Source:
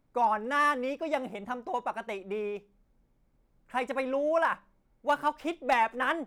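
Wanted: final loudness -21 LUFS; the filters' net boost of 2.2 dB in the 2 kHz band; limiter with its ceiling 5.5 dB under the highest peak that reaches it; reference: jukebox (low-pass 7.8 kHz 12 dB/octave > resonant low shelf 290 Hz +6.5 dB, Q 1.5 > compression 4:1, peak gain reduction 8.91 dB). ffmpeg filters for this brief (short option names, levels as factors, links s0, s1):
-af "equalizer=f=2000:t=o:g=3,alimiter=limit=0.0944:level=0:latency=1,lowpass=7800,lowshelf=f=290:t=q:w=1.5:g=6.5,acompressor=threshold=0.0178:ratio=4,volume=7.5"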